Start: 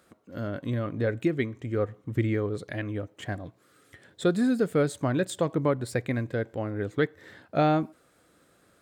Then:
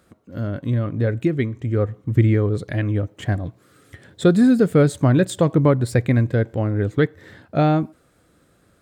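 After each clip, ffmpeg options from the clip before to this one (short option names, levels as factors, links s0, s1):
-af "lowshelf=f=190:g=11.5,dynaudnorm=f=320:g=13:m=1.78,volume=1.19"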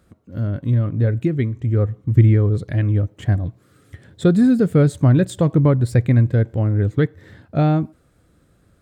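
-af "lowshelf=f=170:g=11.5,volume=0.668"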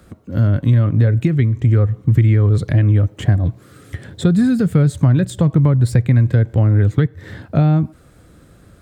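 -filter_complex "[0:a]asplit=2[s0][s1];[s1]alimiter=limit=0.266:level=0:latency=1:release=317,volume=1.19[s2];[s0][s2]amix=inputs=2:normalize=0,acrossover=split=170|780[s3][s4][s5];[s3]acompressor=threshold=0.158:ratio=4[s6];[s4]acompressor=threshold=0.0447:ratio=4[s7];[s5]acompressor=threshold=0.0178:ratio=4[s8];[s6][s7][s8]amix=inputs=3:normalize=0,volume=1.58"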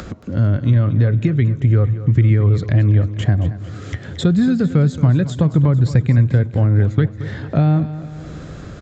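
-af "acompressor=mode=upward:threshold=0.112:ratio=2.5,aresample=16000,aresample=44100,aecho=1:1:225|450|675|900|1125|1350:0.2|0.11|0.0604|0.0332|0.0183|0.01,volume=0.891"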